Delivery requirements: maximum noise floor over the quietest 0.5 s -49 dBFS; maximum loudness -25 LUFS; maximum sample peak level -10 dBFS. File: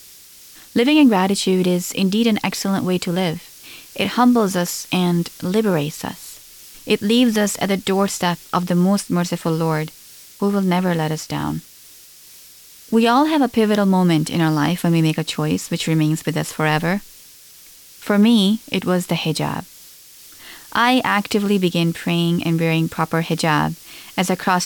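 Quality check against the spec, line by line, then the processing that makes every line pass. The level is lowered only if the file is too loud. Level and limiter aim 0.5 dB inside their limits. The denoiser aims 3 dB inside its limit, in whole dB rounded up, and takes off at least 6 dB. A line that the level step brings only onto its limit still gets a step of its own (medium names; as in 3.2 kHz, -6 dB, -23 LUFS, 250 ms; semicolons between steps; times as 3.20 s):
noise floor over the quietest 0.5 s -44 dBFS: fail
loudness -18.5 LUFS: fail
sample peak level -5.5 dBFS: fail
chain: trim -7 dB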